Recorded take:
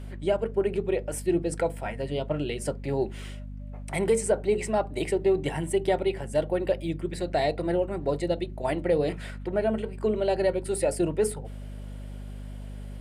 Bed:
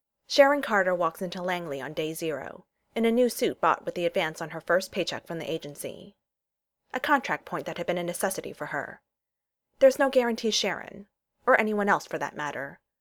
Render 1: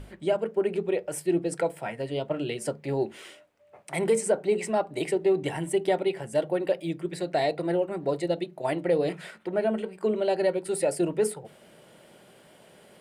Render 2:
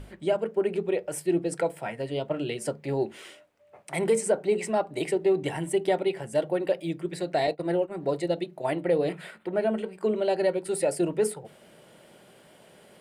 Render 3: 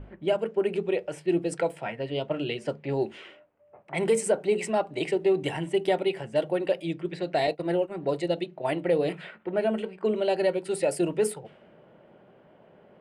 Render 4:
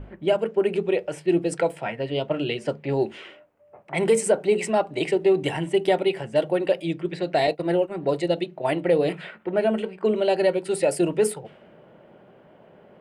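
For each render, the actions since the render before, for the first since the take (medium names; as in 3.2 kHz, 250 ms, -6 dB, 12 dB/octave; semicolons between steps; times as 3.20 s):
hum notches 50/100/150/200/250 Hz
7.47–7.98 s: expander -29 dBFS; 8.63–9.55 s: peaking EQ 5.9 kHz -9 dB 0.52 oct
peaking EQ 2.8 kHz +4.5 dB 0.51 oct; level-controlled noise filter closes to 1.1 kHz, open at -22.5 dBFS
trim +4 dB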